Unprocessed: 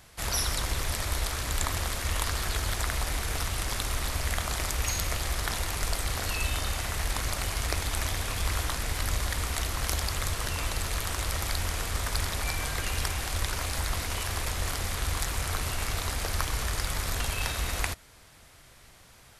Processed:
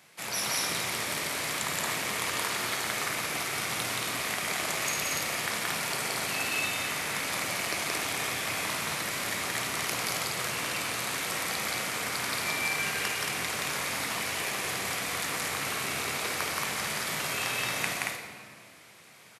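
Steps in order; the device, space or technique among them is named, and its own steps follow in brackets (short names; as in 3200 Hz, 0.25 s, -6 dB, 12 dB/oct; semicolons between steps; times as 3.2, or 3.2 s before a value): stadium PA (HPF 150 Hz 24 dB/oct; bell 2300 Hz +6 dB 0.5 oct; loudspeakers at several distances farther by 60 m -1 dB, 78 m -3 dB; reverb RT60 1.9 s, pre-delay 8 ms, DRR 4 dB); gain -4 dB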